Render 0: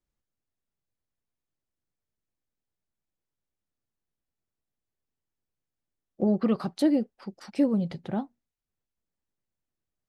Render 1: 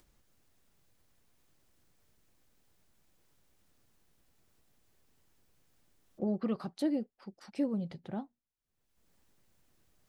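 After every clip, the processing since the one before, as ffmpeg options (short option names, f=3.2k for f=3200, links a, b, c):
-af "acompressor=mode=upward:threshold=-39dB:ratio=2.5,volume=-8.5dB"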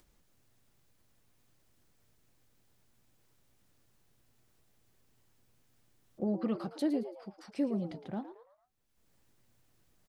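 -filter_complex "[0:a]asplit=5[a][b][c][d][e];[b]adelay=112,afreqshift=120,volume=-12.5dB[f];[c]adelay=224,afreqshift=240,volume=-21.1dB[g];[d]adelay=336,afreqshift=360,volume=-29.8dB[h];[e]adelay=448,afreqshift=480,volume=-38.4dB[i];[a][f][g][h][i]amix=inputs=5:normalize=0"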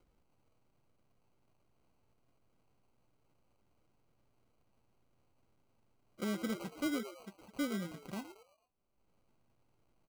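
-af "acrusher=samples=25:mix=1:aa=0.000001,volume=-4.5dB"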